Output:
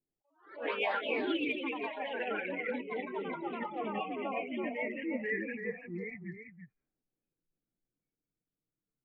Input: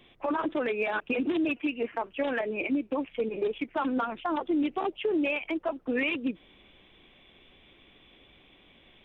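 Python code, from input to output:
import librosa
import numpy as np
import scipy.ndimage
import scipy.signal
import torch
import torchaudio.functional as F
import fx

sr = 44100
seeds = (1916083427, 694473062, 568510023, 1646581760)

p1 = fx.pitch_glide(x, sr, semitones=-8.5, runs='starting unshifted')
p2 = fx.spec_repair(p1, sr, seeds[0], start_s=5.71, length_s=0.43, low_hz=490.0, high_hz=2000.0, source='both')
p3 = fx.noise_reduce_blind(p2, sr, reduce_db=20)
p4 = fx.env_lowpass(p3, sr, base_hz=320.0, full_db=-27.5)
p5 = fx.bass_treble(p4, sr, bass_db=-6, treble_db=1)
p6 = p5 + 0.43 * np.pad(p5, (int(6.6 * sr / 1000.0), 0))[:len(p5)]
p7 = p6 + fx.echo_single(p6, sr, ms=334, db=-7.5, dry=0)
p8 = fx.echo_pitch(p7, sr, ms=81, semitones=2, count=3, db_per_echo=-3.0)
p9 = fx.peak_eq(p8, sr, hz=1400.0, db=4.0, octaves=2.2)
p10 = fx.attack_slew(p9, sr, db_per_s=130.0)
y = F.gain(torch.from_numpy(p10), -7.0).numpy()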